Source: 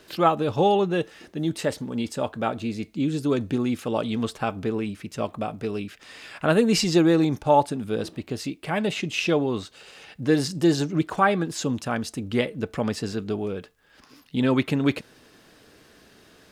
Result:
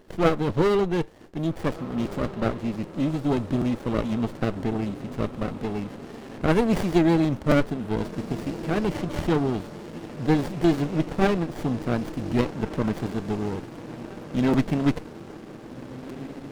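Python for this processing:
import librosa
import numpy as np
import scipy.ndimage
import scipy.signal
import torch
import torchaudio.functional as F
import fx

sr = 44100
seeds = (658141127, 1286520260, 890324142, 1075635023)

y = fx.echo_diffused(x, sr, ms=1660, feedback_pct=64, wet_db=-14)
y = fx.buffer_crackle(y, sr, first_s=0.49, period_s=0.78, block=256, kind='repeat')
y = fx.running_max(y, sr, window=33)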